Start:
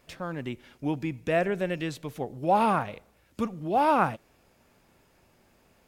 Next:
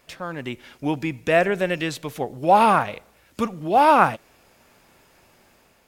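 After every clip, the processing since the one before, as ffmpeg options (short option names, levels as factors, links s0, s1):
-af "lowshelf=f=450:g=-7,dynaudnorm=f=130:g=7:m=1.58,volume=1.88"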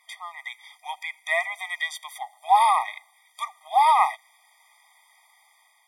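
-af "superequalizer=8b=0.355:11b=3.16:13b=1.78:16b=2.24,afftfilt=real='re*eq(mod(floor(b*sr/1024/630),2),1)':imag='im*eq(mod(floor(b*sr/1024/630),2),1)':win_size=1024:overlap=0.75,volume=0.891"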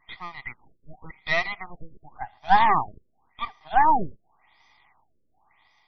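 -af "aeval=exprs='if(lt(val(0),0),0.251*val(0),val(0))':c=same,afftfilt=real='re*lt(b*sr/1024,560*pow(6200/560,0.5+0.5*sin(2*PI*0.91*pts/sr)))':imag='im*lt(b*sr/1024,560*pow(6200/560,0.5+0.5*sin(2*PI*0.91*pts/sr)))':win_size=1024:overlap=0.75,volume=1.5"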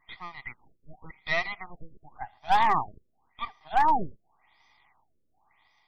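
-af "asoftclip=type=hard:threshold=0.335,volume=0.668"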